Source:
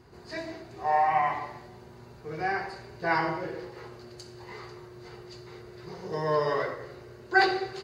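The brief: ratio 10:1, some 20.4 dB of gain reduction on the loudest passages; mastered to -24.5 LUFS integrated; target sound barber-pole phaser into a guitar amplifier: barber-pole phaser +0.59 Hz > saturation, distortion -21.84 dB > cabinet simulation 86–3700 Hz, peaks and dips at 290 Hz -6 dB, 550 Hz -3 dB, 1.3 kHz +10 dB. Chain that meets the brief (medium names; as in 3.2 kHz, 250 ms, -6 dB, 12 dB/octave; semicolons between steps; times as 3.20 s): compression 10:1, threshold -37 dBFS; barber-pole phaser +0.59 Hz; saturation -34.5 dBFS; cabinet simulation 86–3700 Hz, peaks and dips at 290 Hz -6 dB, 550 Hz -3 dB, 1.3 kHz +10 dB; trim +22 dB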